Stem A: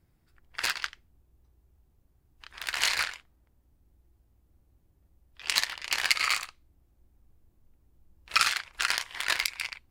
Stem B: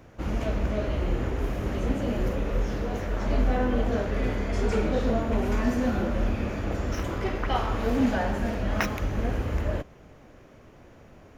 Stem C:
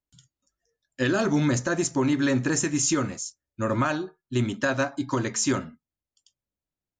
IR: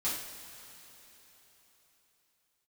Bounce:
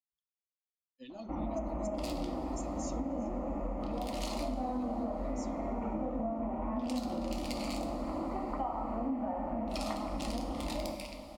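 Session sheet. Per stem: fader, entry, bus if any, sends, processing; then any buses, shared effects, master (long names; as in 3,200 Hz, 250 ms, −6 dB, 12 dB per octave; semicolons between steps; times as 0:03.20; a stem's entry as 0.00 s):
−3.0 dB, 1.40 s, send −7 dB, downward compressor 1.5 to 1, threshold −54 dBFS, peak gain reduction 13 dB
−1.0 dB, 1.10 s, send −6.5 dB, inverse Chebyshev low-pass filter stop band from 4,600 Hz, stop band 50 dB; low-shelf EQ 140 Hz −11 dB
−17.0 dB, 0.00 s, send −17.5 dB, spectral dynamics exaggerated over time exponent 2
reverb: on, pre-delay 3 ms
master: phaser with its sweep stopped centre 430 Hz, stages 6; downward compressor 6 to 1, threshold −32 dBFS, peak gain reduction 11.5 dB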